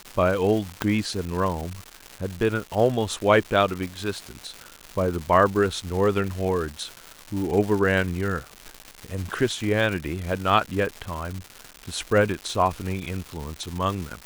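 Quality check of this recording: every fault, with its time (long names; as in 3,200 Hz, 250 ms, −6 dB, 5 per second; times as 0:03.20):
surface crackle 340 per second −29 dBFS
0:00.82: click −8 dBFS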